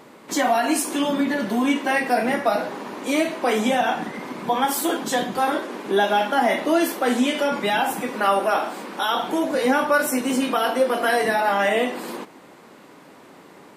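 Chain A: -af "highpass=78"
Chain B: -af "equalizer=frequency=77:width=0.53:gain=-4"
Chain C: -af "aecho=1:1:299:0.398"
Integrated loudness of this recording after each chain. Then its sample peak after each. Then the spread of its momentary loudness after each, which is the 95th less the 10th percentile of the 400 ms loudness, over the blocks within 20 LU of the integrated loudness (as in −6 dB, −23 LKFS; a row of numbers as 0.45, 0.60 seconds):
−22.0, −22.0, −21.5 LKFS; −7.0, −7.5, −6.5 dBFS; 7, 7, 6 LU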